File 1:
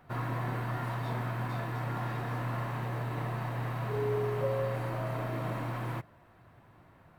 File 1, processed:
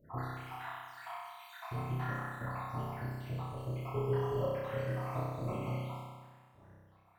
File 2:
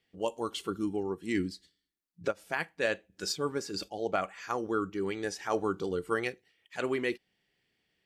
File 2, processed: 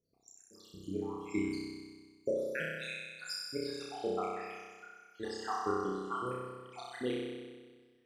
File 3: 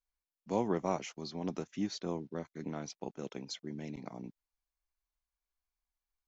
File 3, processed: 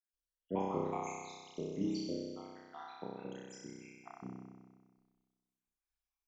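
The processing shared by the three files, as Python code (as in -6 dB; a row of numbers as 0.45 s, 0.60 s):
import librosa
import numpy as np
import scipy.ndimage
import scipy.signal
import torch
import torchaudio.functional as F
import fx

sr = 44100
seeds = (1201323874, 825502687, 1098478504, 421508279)

y = fx.spec_dropout(x, sr, seeds[0], share_pct=80)
y = fx.room_flutter(y, sr, wall_m=5.4, rt60_s=1.5)
y = F.gain(torch.from_numpy(y), -3.5).numpy()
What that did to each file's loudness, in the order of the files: -4.5 LU, -4.5 LU, -3.0 LU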